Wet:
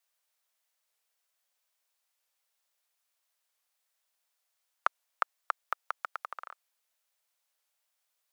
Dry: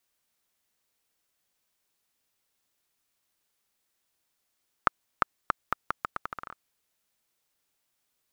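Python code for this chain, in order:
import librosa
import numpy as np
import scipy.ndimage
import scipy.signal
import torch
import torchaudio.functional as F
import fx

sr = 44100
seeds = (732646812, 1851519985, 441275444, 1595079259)

y = scipy.signal.sosfilt(scipy.signal.butter(6, 510.0, 'highpass', fs=sr, output='sos'), x)
y = fx.record_warp(y, sr, rpm=45.0, depth_cents=100.0)
y = y * librosa.db_to_amplitude(-2.5)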